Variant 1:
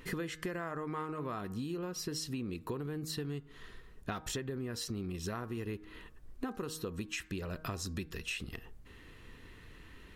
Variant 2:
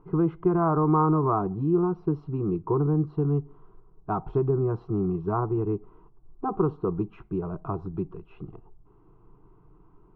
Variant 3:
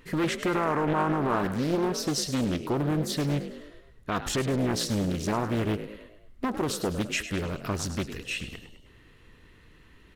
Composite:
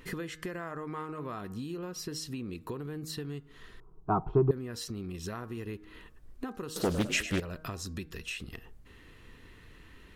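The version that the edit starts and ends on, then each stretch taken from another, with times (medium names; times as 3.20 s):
1
3.80–4.51 s: from 2
6.76–7.40 s: from 3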